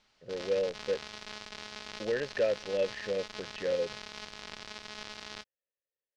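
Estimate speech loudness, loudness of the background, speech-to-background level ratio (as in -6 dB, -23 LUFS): -34.0 LUFS, -43.5 LUFS, 9.5 dB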